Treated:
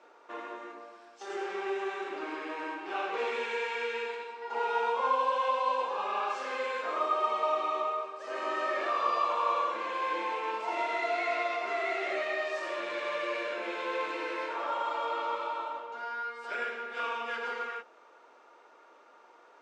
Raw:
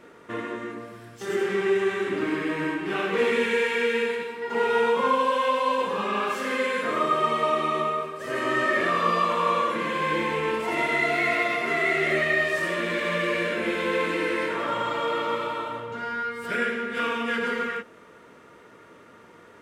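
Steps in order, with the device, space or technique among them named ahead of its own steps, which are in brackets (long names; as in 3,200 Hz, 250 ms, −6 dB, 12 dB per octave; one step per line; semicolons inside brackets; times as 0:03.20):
phone speaker on a table (loudspeaker in its box 390–6,500 Hz, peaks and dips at 440 Hz −6 dB, 810 Hz +8 dB, 1,900 Hz −8 dB, 3,200 Hz −4 dB)
level −5.5 dB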